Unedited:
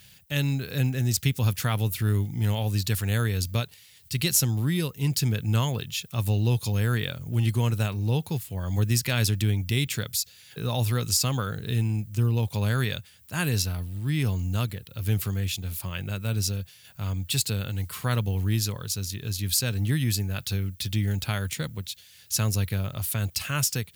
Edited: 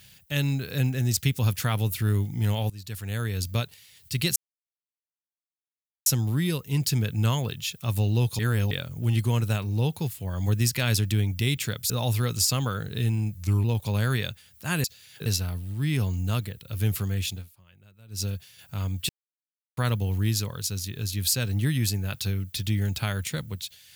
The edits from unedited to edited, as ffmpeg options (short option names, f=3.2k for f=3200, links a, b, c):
-filter_complex "[0:a]asplit=14[a][b][c][d][e][f][g][h][i][j][k][l][m][n];[a]atrim=end=2.7,asetpts=PTS-STARTPTS,afade=t=out:st=2.696:d=0.004:c=hsin:silence=0.0944061[o];[b]atrim=start=2.7:end=4.36,asetpts=PTS-STARTPTS,afade=t=in:d=0.9:silence=0.0944061,afade=t=out:st=1.656:d=0.004:c=hsin,apad=pad_dur=1.7[p];[c]atrim=start=4.36:end=6.692,asetpts=PTS-STARTPTS,afade=t=in:d=0.004:c=hsin[q];[d]atrim=start=6.688:end=7.012,asetpts=PTS-STARTPTS,areverse[r];[e]atrim=start=7.008:end=10.202[s];[f]atrim=start=10.618:end=12.074[t];[g]atrim=start=12.07:end=12.32,asetpts=PTS-STARTPTS,asetrate=37926,aresample=44100[u];[h]atrim=start=12.316:end=13.522[v];[i]atrim=start=10.198:end=10.622[w];[j]atrim=start=13.518:end=15.78,asetpts=PTS-STARTPTS,afade=t=out:st=2.092:d=0.17:c=qua:silence=0.0630957[x];[k]atrim=start=15.78:end=16.32,asetpts=PTS-STARTPTS,volume=-24dB[y];[l]atrim=start=16.32:end=17.35,asetpts=PTS-STARTPTS,afade=t=in:d=0.17:c=qua:silence=0.0630957,afade=t=out:st=1.026:d=0.004:c=hsin[z];[m]atrim=start=17.35:end=18.03,asetpts=PTS-STARTPTS,volume=0[aa];[n]atrim=start=18.03,asetpts=PTS-STARTPTS,afade=t=in:d=0.004:c=hsin[ab];[o][p][q]concat=n=3:v=0:a=1[ac];[ac][r]acrossfade=d=0.004:c1=hsin:c2=hsin[ad];[ad][s]acrossfade=d=0.004:c1=hsin:c2=hsin[ae];[ae][t]acrossfade=d=0.004:c1=hsin:c2=hsin[af];[af][u]acrossfade=d=0.004:c1=hsin:c2=hsin[ag];[ag][v]acrossfade=d=0.004:c1=hsin:c2=hsin[ah];[ah][w]acrossfade=d=0.004:c1=hsin:c2=hsin[ai];[x][y][z][aa][ab]concat=n=5:v=0:a=1[aj];[ai][aj]acrossfade=d=0.004:c1=hsin:c2=hsin"